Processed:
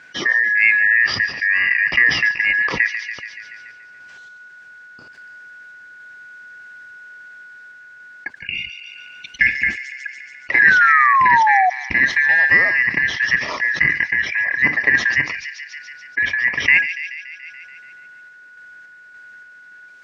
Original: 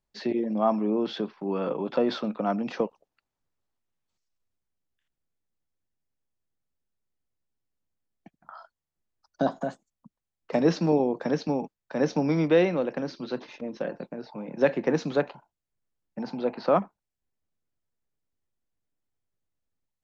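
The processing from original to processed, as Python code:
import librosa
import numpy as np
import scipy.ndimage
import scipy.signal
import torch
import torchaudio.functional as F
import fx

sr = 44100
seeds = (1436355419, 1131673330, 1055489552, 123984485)

p1 = fx.band_shuffle(x, sr, order='2143')
p2 = scipy.signal.sosfilt(scipy.signal.butter(2, 70.0, 'highpass', fs=sr, output='sos'), p1)
p3 = fx.rider(p2, sr, range_db=4, speed_s=0.5)
p4 = p2 + (p3 * librosa.db_to_amplitude(1.0))
p5 = fx.spec_paint(p4, sr, seeds[0], shape='fall', start_s=10.58, length_s=1.12, low_hz=720.0, high_hz=1700.0, level_db=-17.0)
p6 = fx.dmg_noise_colour(p5, sr, seeds[1], colour='blue', level_db=-55.0, at=(12.03, 12.68), fade=0.02)
p7 = fx.air_absorb(p6, sr, metres=120.0)
p8 = p7 + fx.echo_wet_highpass(p7, sr, ms=143, feedback_pct=50, hz=5100.0, wet_db=-6.5, dry=0)
p9 = fx.tremolo_random(p8, sr, seeds[2], hz=3.5, depth_pct=55)
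p10 = fx.env_flatten(p9, sr, amount_pct=50)
y = p10 * librosa.db_to_amplitude(2.0)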